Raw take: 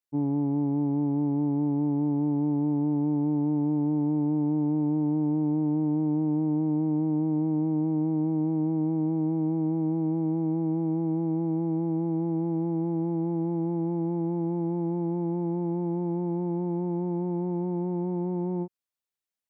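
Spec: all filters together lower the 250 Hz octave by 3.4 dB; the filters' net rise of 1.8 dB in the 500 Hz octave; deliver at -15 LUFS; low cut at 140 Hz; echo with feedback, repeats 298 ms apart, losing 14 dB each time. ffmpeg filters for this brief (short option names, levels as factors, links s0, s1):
-af "highpass=140,equalizer=f=250:t=o:g=-8.5,equalizer=f=500:t=o:g=8.5,aecho=1:1:298|596:0.2|0.0399,volume=5.62"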